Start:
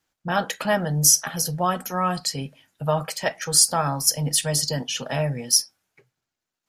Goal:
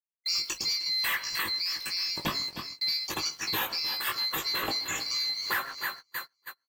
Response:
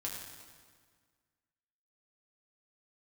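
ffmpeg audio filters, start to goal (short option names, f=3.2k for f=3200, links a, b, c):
-filter_complex "[0:a]afftfilt=real='real(if(lt(b,736),b+184*(1-2*mod(floor(b/184),2)),b),0)':imag='imag(if(lt(b,736),b+184*(1-2*mod(floor(b/184),2)),b),0)':win_size=2048:overlap=0.75,bandreject=f=136.8:t=h:w=4,bandreject=f=273.6:t=h:w=4,bandreject=f=410.4:t=h:w=4,bandreject=f=547.2:t=h:w=4,bandreject=f=684:t=h:w=4,bandreject=f=820.8:t=h:w=4,bandreject=f=957.6:t=h:w=4,bandreject=f=1.0944k:t=h:w=4,bandreject=f=1.2312k:t=h:w=4,bandreject=f=1.368k:t=h:w=4,asplit=2[a][b];[b]adelay=129,lowpass=f=1.8k:p=1,volume=-20.5dB,asplit=2[c][d];[d]adelay=129,lowpass=f=1.8k:p=1,volume=0.35,asplit=2[e][f];[f]adelay=129,lowpass=f=1.8k:p=1,volume=0.35[g];[c][e][g]amix=inputs=3:normalize=0[h];[a][h]amix=inputs=2:normalize=0,acrusher=bits=6:mix=0:aa=0.5,asplit=2[i][j];[j]adelay=19,volume=-4dB[k];[i][k]amix=inputs=2:normalize=0,asplit=2[l][m];[m]aecho=0:1:307|614|921|1228:0.168|0.0823|0.0403|0.0198[n];[l][n]amix=inputs=2:normalize=0,asplit=2[o][p];[p]asetrate=22050,aresample=44100,atempo=2,volume=-16dB[q];[o][q]amix=inputs=2:normalize=0,dynaudnorm=f=410:g=5:m=8dB,agate=range=-26dB:threshold=-38dB:ratio=16:detection=peak,asoftclip=type=tanh:threshold=-14dB,acompressor=threshold=-26dB:ratio=6,adynamicequalizer=threshold=0.00708:dfrequency=4600:dqfactor=0.7:tfrequency=4600:tqfactor=0.7:attack=5:release=100:ratio=0.375:range=3:mode=cutabove:tftype=highshelf"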